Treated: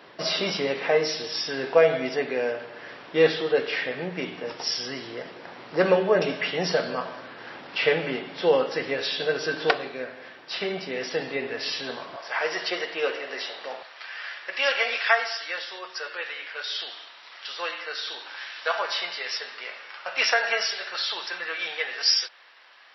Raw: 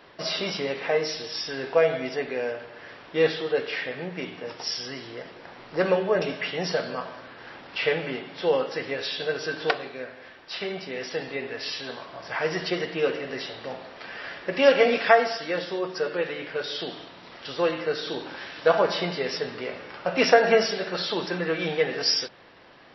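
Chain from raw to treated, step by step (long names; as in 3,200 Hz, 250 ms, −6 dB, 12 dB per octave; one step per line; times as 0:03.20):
high-pass filter 130 Hz 12 dB per octave, from 0:12.16 570 Hz, from 0:13.83 1,200 Hz
level +2.5 dB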